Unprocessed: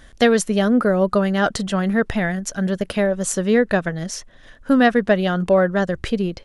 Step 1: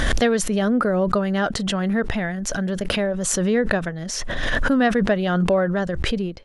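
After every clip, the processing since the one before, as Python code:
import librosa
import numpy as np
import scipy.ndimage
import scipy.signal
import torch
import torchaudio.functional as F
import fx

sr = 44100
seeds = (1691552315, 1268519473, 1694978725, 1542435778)

y = fx.high_shelf(x, sr, hz=7800.0, db=-7.5)
y = fx.pre_swell(y, sr, db_per_s=20.0)
y = y * librosa.db_to_amplitude(-4.0)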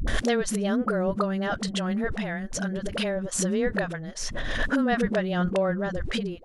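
y = fx.dispersion(x, sr, late='highs', ms=77.0, hz=330.0)
y = y * librosa.db_to_amplitude(-5.5)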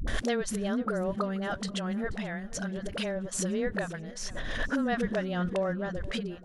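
y = fx.echo_feedback(x, sr, ms=482, feedback_pct=45, wet_db=-19.5)
y = y * librosa.db_to_amplitude(-5.0)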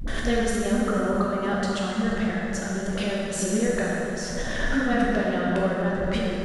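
y = fx.rev_plate(x, sr, seeds[0], rt60_s=3.3, hf_ratio=0.6, predelay_ms=0, drr_db=-5.5)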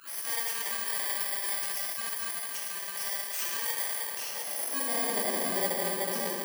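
y = fx.bit_reversed(x, sr, seeds[1], block=32)
y = np.clip(10.0 ** (20.0 / 20.0) * y, -1.0, 1.0) / 10.0 ** (20.0 / 20.0)
y = fx.filter_sweep_highpass(y, sr, from_hz=1200.0, to_hz=400.0, start_s=3.96, end_s=5.31, q=0.8)
y = y * librosa.db_to_amplitude(-2.5)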